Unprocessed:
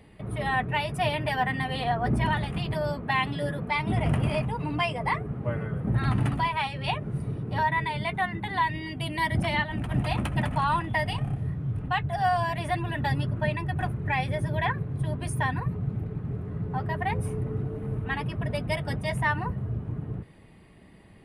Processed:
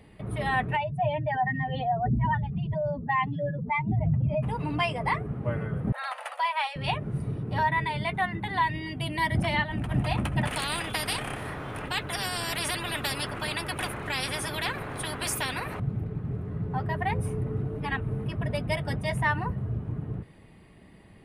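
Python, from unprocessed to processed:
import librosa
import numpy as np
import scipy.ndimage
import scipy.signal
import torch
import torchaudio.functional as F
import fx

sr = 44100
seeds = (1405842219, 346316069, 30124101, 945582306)

y = fx.spec_expand(x, sr, power=2.1, at=(0.75, 4.42), fade=0.02)
y = fx.brickwall_highpass(y, sr, low_hz=480.0, at=(5.92, 6.76))
y = fx.spectral_comp(y, sr, ratio=4.0, at=(10.47, 15.8))
y = fx.edit(y, sr, fx.reverse_span(start_s=17.8, length_s=0.46), tone=tone)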